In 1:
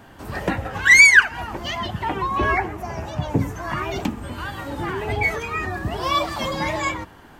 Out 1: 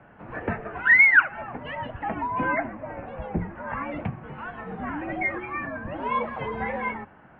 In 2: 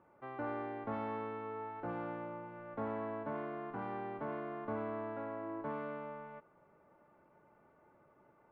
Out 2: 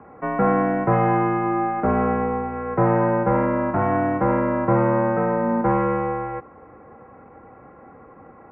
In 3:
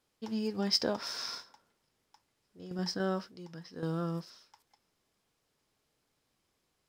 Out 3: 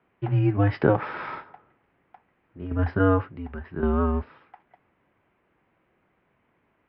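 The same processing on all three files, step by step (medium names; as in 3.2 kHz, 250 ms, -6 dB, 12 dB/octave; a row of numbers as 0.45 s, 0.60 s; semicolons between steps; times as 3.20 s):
mistuned SSB -96 Hz 170–2500 Hz; peak normalisation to -6 dBFS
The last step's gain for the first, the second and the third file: -4.5 dB, +21.0 dB, +13.0 dB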